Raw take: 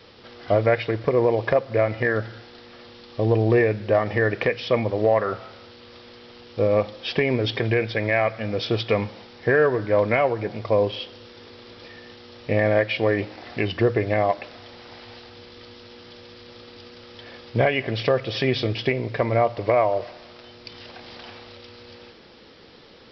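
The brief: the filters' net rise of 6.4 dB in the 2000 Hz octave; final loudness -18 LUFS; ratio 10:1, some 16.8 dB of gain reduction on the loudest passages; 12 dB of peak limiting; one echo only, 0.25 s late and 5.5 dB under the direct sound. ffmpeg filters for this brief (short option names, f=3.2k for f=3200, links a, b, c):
-af "equalizer=f=2k:t=o:g=7.5,acompressor=threshold=-31dB:ratio=10,alimiter=level_in=3dB:limit=-24dB:level=0:latency=1,volume=-3dB,aecho=1:1:250:0.531,volume=19.5dB"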